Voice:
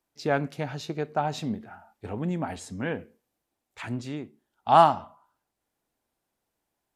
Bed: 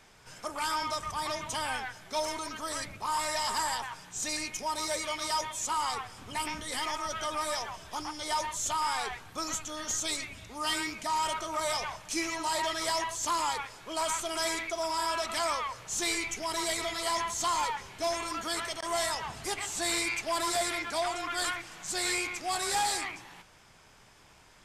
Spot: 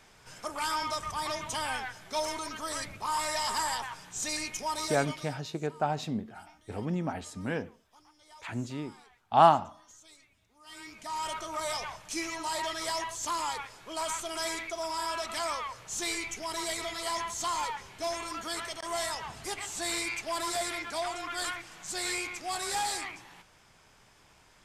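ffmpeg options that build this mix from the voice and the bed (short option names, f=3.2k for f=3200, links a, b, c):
-filter_complex "[0:a]adelay=4650,volume=-2.5dB[a];[1:a]volume=21dB,afade=t=out:st=4.76:d=0.61:silence=0.0668344,afade=t=in:st=10.65:d=0.74:silence=0.0891251[b];[a][b]amix=inputs=2:normalize=0"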